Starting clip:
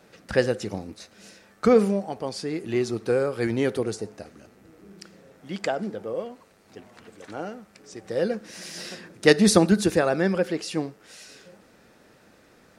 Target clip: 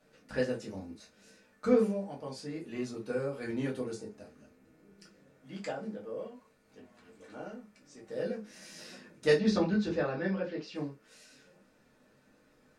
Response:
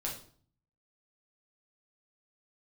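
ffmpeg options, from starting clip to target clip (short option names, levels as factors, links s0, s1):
-filter_complex "[0:a]asettb=1/sr,asplit=3[s0][s1][s2];[s0]atrim=end=9.384[s3];[s1]atrim=start=9.38:end=10.75,asetpts=PTS-STARTPTS,afade=t=in:d=0.004:c=qsin,afade=t=out:st=1.366:d=0.004:c=qsin,lowpass=f=5000:w=0.5412,lowpass=f=5000:w=1.3066[s4];[s2]atrim=start=10.746[s5];[s3][s4]acrossfade=d=0.004:c1=hsin:c2=qsin[s6];[s6][s5]acrossfade=d=0.004:c1=qsin:c2=hsin[s7];[1:a]atrim=start_sample=2205,atrim=end_sample=6174,asetrate=79380,aresample=44100[s8];[s7][s8]afir=irnorm=-1:irlink=0,volume=0.398"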